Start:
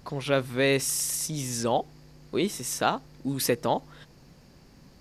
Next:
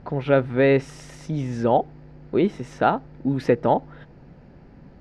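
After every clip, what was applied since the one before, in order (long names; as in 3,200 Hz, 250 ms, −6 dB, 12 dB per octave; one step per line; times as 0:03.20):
low-pass filter 1,600 Hz 12 dB per octave
notch filter 1,100 Hz, Q 6.1
level +7 dB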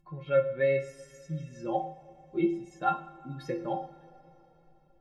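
spectral dynamics exaggerated over time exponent 1.5
stiff-string resonator 160 Hz, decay 0.38 s, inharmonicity 0.03
coupled-rooms reverb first 0.49 s, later 4.2 s, from −20 dB, DRR 6 dB
level +4.5 dB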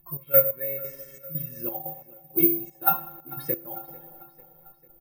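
gate pattern "x.x..xx.x" 89 BPM −12 dB
repeating echo 446 ms, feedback 55%, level −20 dB
bad sample-rate conversion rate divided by 3×, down filtered, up zero stuff
level +2 dB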